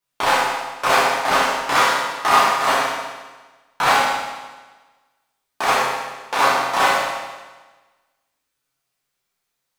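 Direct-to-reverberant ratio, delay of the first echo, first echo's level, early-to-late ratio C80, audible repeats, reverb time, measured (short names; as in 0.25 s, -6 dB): -10.0 dB, none, none, 1.5 dB, none, 1.3 s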